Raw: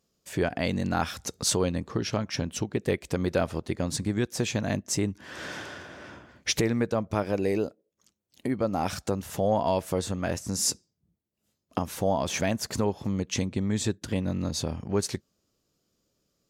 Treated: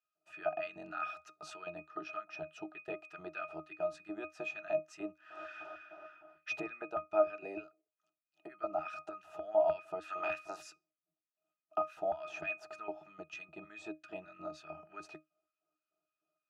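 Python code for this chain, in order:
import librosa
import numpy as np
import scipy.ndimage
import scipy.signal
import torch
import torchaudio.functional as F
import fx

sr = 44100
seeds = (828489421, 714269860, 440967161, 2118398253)

y = fx.spec_clip(x, sr, under_db=23, at=(10.01, 10.61), fade=0.02)
y = fx.filter_lfo_highpass(y, sr, shape='square', hz=3.3, low_hz=770.0, high_hz=1600.0, q=1.8)
y = fx.octave_resonator(y, sr, note='D#', decay_s=0.17)
y = y * librosa.db_to_amplitude(9.0)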